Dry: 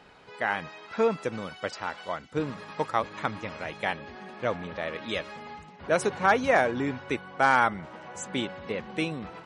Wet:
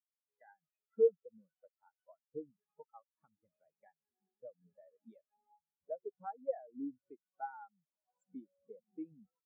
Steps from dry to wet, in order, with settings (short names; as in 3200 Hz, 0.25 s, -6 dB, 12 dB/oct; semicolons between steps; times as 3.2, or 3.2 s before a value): compressor 3:1, threshold -34 dBFS, peak gain reduction 13.5 dB; spectral expander 4:1; gain -2.5 dB